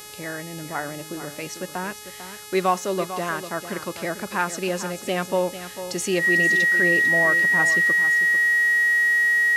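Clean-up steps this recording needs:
hum removal 421.7 Hz, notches 31
notch filter 1,900 Hz, Q 30
echo removal 447 ms −11.5 dB

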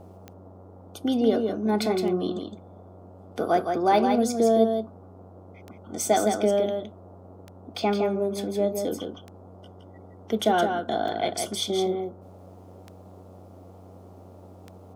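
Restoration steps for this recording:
click removal
hum removal 92.8 Hz, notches 15
noise reduction from a noise print 23 dB
echo removal 165 ms −5.5 dB

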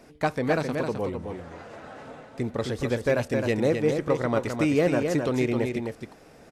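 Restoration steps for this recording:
clipped peaks rebuilt −13.5 dBFS
echo removal 262 ms −5.5 dB

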